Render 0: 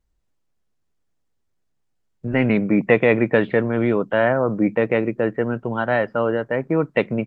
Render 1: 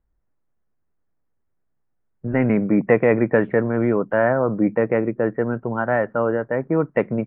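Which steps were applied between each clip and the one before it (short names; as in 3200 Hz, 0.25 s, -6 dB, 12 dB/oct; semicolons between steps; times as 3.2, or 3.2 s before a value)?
LPF 1900 Hz 24 dB/oct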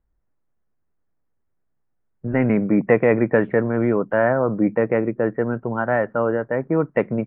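nothing audible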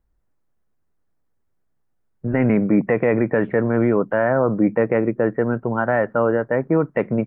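limiter -10.5 dBFS, peak gain reduction 7 dB; gain +2.5 dB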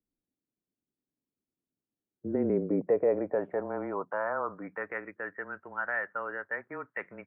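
band-pass sweep 290 Hz -> 1800 Hz, 1.9–5.09; frequency shift -20 Hz; gain -4 dB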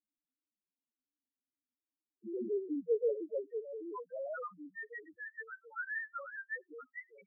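low shelf 280 Hz -8 dB; loudest bins only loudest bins 1; gain +3 dB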